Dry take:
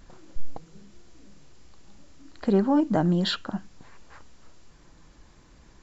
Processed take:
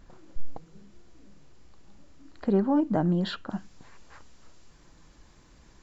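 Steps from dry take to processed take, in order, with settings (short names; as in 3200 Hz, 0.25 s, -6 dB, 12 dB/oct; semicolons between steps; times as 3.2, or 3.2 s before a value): high shelf 2700 Hz -5.5 dB, from 2.44 s -10.5 dB, from 3.5 s +2 dB; gain -2 dB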